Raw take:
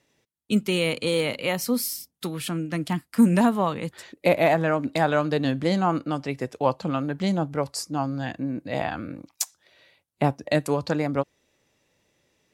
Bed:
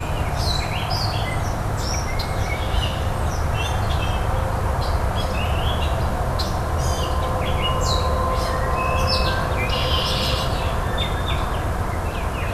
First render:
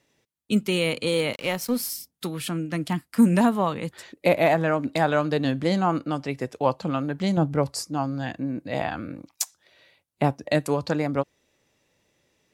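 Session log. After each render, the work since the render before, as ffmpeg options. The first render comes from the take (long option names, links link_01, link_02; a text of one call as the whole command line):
ffmpeg -i in.wav -filter_complex "[0:a]asettb=1/sr,asplit=3[link_01][link_02][link_03];[link_01]atrim=end=1.334[link_04];[link_02]atrim=start=1.33:end=1.9,asetpts=PTS-STARTPTS,afade=type=in:duration=0.004:curve=qsin,afade=type=out:start_time=0.566:duration=0.004:curve=qsin,aeval=exprs='sgn(val(0))*max(abs(val(0))-0.01,0)':channel_layout=same[link_05];[link_03]atrim=start=1.896[link_06];[link_04][link_05]acrossfade=duration=0.004:curve1=hsin:curve2=qsin[link_07];[link_07][link_06]acrossfade=duration=0.004:curve1=qsin:curve2=hsin,asettb=1/sr,asplit=3[link_08][link_09][link_10];[link_08]atrim=end=7.374[link_11];[link_09]atrim=start=7.37:end=7.83,asetpts=PTS-STARTPTS,afade=type=in:duration=0.004:curve=qsin,afade=type=out:start_time=0.456:duration=0.004:curve=qsin,lowshelf=frequency=380:gain=7[link_12];[link_10]atrim=start=7.826[link_13];[link_11][link_12]acrossfade=duration=0.004:curve1=hsin:curve2=qsin[link_14];[link_14][link_13]acrossfade=duration=0.004:curve1=qsin:curve2=hsin" out.wav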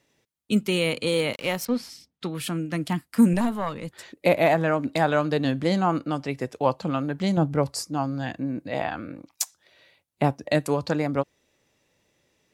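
ffmpeg -i in.wav -filter_complex "[0:a]asettb=1/sr,asplit=3[link_01][link_02][link_03];[link_01]atrim=end=1.654[link_04];[link_02]atrim=start=1.65:end=2.35,asetpts=PTS-STARTPTS,afade=type=in:duration=0.004:curve=qsin,afade=type=out:start_time=0.696:duration=0.004:curve=qsin,lowpass=4000[link_05];[link_03]atrim=start=2.346[link_06];[link_04][link_05]acrossfade=duration=0.004:curve1=hsin:curve2=qsin[link_07];[link_07][link_06]acrossfade=duration=0.004:curve1=qsin:curve2=hsin,asettb=1/sr,asplit=3[link_08][link_09][link_10];[link_08]atrim=end=3.334[link_11];[link_09]atrim=start=3.33:end=3.99,asetpts=PTS-STARTPTS,afade=type=in:duration=0.004:curve=qsin,afade=type=out:start_time=0.656:duration=0.004:curve=qsin,aeval=exprs='(tanh(5.01*val(0)+0.65)-tanh(0.65))/5.01':channel_layout=same[link_12];[link_10]atrim=start=3.986[link_13];[link_11][link_12]acrossfade=duration=0.004:curve1=hsin:curve2=qsin[link_14];[link_14][link_13]acrossfade=duration=0.004:curve1=qsin:curve2=hsin,asettb=1/sr,asplit=3[link_15][link_16][link_17];[link_15]atrim=end=8.694[link_18];[link_16]atrim=start=8.69:end=9.3,asetpts=PTS-STARTPTS,afade=type=in:duration=0.004:curve=qsin,afade=type=out:start_time=0.606:duration=0.004:curve=qsin,bass=frequency=250:gain=-4,treble=frequency=4000:gain=-4[link_19];[link_17]atrim=start=9.296[link_20];[link_18][link_19]acrossfade=duration=0.004:curve1=hsin:curve2=qsin[link_21];[link_21][link_20]acrossfade=duration=0.004:curve1=qsin:curve2=hsin" out.wav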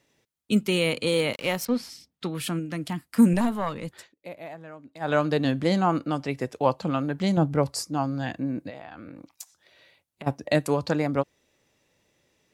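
ffmpeg -i in.wav -filter_complex "[0:a]asettb=1/sr,asplit=3[link_01][link_02][link_03];[link_01]atrim=end=2.594[link_04];[link_02]atrim=start=2.59:end=3.08,asetpts=PTS-STARTPTS,afade=type=in:duration=0.004:curve=qsin,afade=type=out:start_time=0.486:duration=0.004:curve=qsin,acompressor=threshold=-33dB:ratio=1.5:attack=3.2:release=140:knee=1:detection=peak[link_05];[link_03]atrim=start=3.076[link_06];[link_04][link_05]acrossfade=duration=0.004:curve1=hsin:curve2=qsin[link_07];[link_07][link_06]acrossfade=duration=0.004:curve1=qsin:curve2=hsin,asplit=3[link_08][link_09][link_10];[link_08]afade=type=out:start_time=8.69:duration=0.02[link_11];[link_09]acompressor=threshold=-37dB:ratio=8:attack=3.2:release=140:knee=1:detection=peak,afade=type=in:start_time=8.69:duration=0.02,afade=type=out:start_time=10.26:duration=0.02[link_12];[link_10]afade=type=in:start_time=10.26:duration=0.02[link_13];[link_11][link_12][link_13]amix=inputs=3:normalize=0,asplit=3[link_14][link_15][link_16];[link_14]atrim=end=4.09,asetpts=PTS-STARTPTS,afade=type=out:start_time=3.96:duration=0.13:silence=0.1[link_17];[link_15]atrim=start=4.09:end=5,asetpts=PTS-STARTPTS,volume=-20dB[link_18];[link_16]atrim=start=5,asetpts=PTS-STARTPTS,afade=type=in:duration=0.13:silence=0.1[link_19];[link_17][link_18][link_19]concat=n=3:v=0:a=1" out.wav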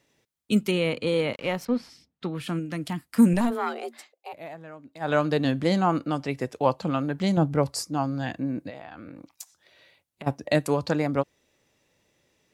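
ffmpeg -i in.wav -filter_complex "[0:a]asettb=1/sr,asplit=3[link_01][link_02][link_03];[link_01]atrim=end=0.714[link_04];[link_02]atrim=start=0.71:end=2.49,asetpts=PTS-STARTPTS,afade=type=in:duration=0.004:curve=qsin,afade=type=out:start_time=1.776:duration=0.004:curve=qsin,lowpass=frequency=2200:poles=1[link_05];[link_03]atrim=start=2.486[link_06];[link_04][link_05]acrossfade=duration=0.004:curve1=hsin:curve2=qsin[link_07];[link_07][link_06]acrossfade=duration=0.004:curve1=qsin:curve2=hsin,asplit=3[link_08][link_09][link_10];[link_08]afade=type=out:start_time=3.5:duration=0.02[link_11];[link_09]afreqshift=230,afade=type=in:start_time=3.5:duration=0.02,afade=type=out:start_time=4.32:duration=0.02[link_12];[link_10]afade=type=in:start_time=4.32:duration=0.02[link_13];[link_11][link_12][link_13]amix=inputs=3:normalize=0" out.wav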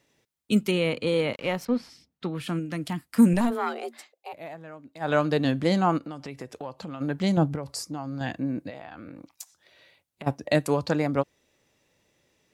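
ffmpeg -i in.wav -filter_complex "[0:a]asplit=3[link_01][link_02][link_03];[link_01]afade=type=out:start_time=5.97:duration=0.02[link_04];[link_02]acompressor=threshold=-34dB:ratio=4:attack=3.2:release=140:knee=1:detection=peak,afade=type=in:start_time=5.97:duration=0.02,afade=type=out:start_time=7:duration=0.02[link_05];[link_03]afade=type=in:start_time=7:duration=0.02[link_06];[link_04][link_05][link_06]amix=inputs=3:normalize=0,asettb=1/sr,asplit=3[link_07][link_08][link_09];[link_07]atrim=end=7.554[link_10];[link_08]atrim=start=7.55:end=8.21,asetpts=PTS-STARTPTS,afade=type=in:duration=0.004:curve=qsin,afade=type=out:start_time=0.656:duration=0.004:curve=qsin,acompressor=threshold=-29dB:ratio=5:attack=3.2:release=140:knee=1:detection=peak[link_11];[link_09]atrim=start=8.206[link_12];[link_10][link_11]acrossfade=duration=0.004:curve1=hsin:curve2=qsin[link_13];[link_13][link_12]acrossfade=duration=0.004:curve1=qsin:curve2=hsin" out.wav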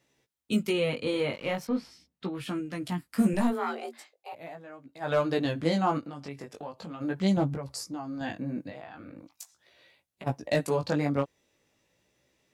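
ffmpeg -i in.wav -af "asoftclip=type=hard:threshold=-11.5dB,flanger=delay=15:depth=6.1:speed=0.4" out.wav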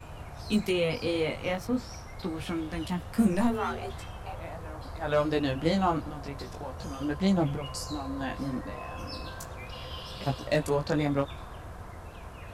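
ffmpeg -i in.wav -i bed.wav -filter_complex "[1:a]volume=-19.5dB[link_01];[0:a][link_01]amix=inputs=2:normalize=0" out.wav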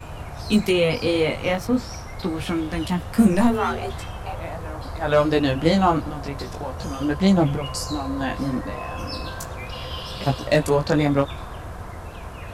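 ffmpeg -i in.wav -af "volume=8dB" out.wav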